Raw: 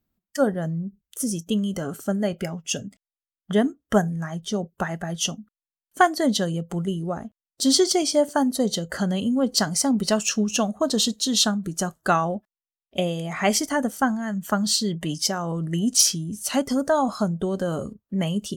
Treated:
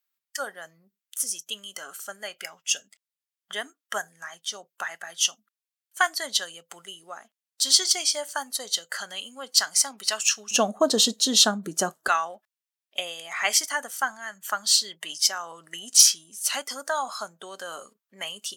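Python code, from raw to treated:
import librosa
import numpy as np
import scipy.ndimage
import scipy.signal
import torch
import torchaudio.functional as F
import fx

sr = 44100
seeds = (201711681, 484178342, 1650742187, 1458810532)

y = fx.highpass(x, sr, hz=fx.steps((0.0, 1500.0), (10.51, 340.0), (12.08, 1300.0)), slope=12)
y = F.gain(torch.from_numpy(y), 3.0).numpy()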